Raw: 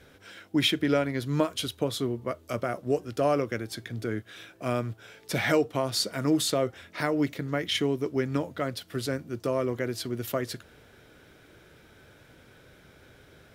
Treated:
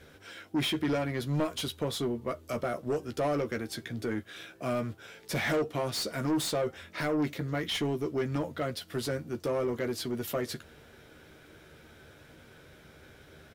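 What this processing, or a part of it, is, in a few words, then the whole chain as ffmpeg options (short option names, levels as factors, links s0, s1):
saturation between pre-emphasis and de-emphasis: -filter_complex "[0:a]highshelf=f=3500:g=8.5,asplit=2[s0][s1];[s1]adelay=13,volume=0.398[s2];[s0][s2]amix=inputs=2:normalize=0,asoftclip=type=tanh:threshold=0.0631,highshelf=f=3500:g=-8.5"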